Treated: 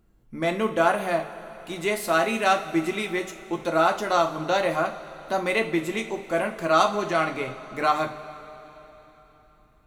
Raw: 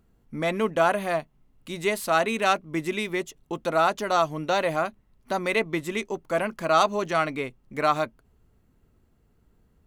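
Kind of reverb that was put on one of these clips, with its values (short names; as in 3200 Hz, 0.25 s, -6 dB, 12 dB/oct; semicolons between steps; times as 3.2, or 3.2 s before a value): two-slope reverb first 0.31 s, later 3.8 s, from -18 dB, DRR 3 dB; gain -1 dB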